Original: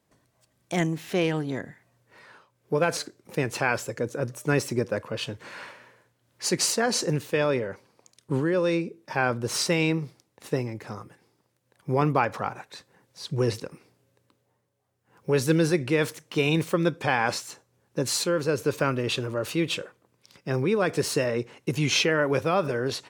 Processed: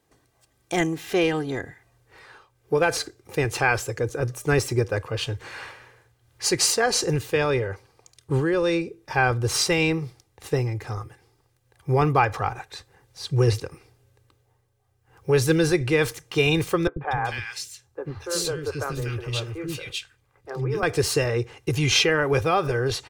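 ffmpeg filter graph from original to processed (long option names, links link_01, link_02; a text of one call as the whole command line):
ffmpeg -i in.wav -filter_complex "[0:a]asettb=1/sr,asplit=3[link_01][link_02][link_03];[link_01]atrim=end=16.874[link_04];[link_02]atrim=start=16.87:end=20.83,asetpts=PTS-STARTPTS,afade=type=in:duration=0.004:curve=qsin,afade=type=out:start_time=3.956:duration=0.004:curve=qsin,flanger=delay=0.6:depth=7.4:regen=-76:speed=1.9:shape=triangular,acrossover=split=350|1800[link_05][link_06][link_07];[link_05]adelay=90[link_08];[link_07]adelay=240[link_09];[link_08][link_06][link_09]amix=inputs=3:normalize=0,atrim=end_sample=174636[link_10];[link_03]atrim=start=20.826[link_11];[link_04][link_10]acrossfade=duration=0.004:curve1=hsin:curve2=qsin[link_12];[link_12][link_11]acrossfade=duration=0.004:curve1=qsin:curve2=hsin,aecho=1:1:2.5:0.45,asubboost=boost=9.5:cutoff=72,volume=3dB" out.wav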